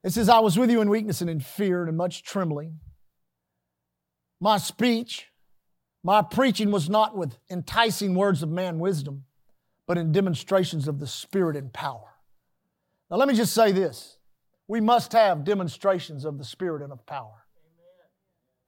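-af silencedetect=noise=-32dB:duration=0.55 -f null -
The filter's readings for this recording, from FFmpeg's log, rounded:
silence_start: 2.67
silence_end: 4.42 | silence_duration: 1.75
silence_start: 5.20
silence_end: 6.05 | silence_duration: 0.85
silence_start: 9.16
silence_end: 9.89 | silence_duration: 0.74
silence_start: 11.96
silence_end: 13.12 | silence_duration: 1.16
silence_start: 14.00
silence_end: 14.70 | silence_duration: 0.69
silence_start: 17.21
silence_end: 18.68 | silence_duration: 1.46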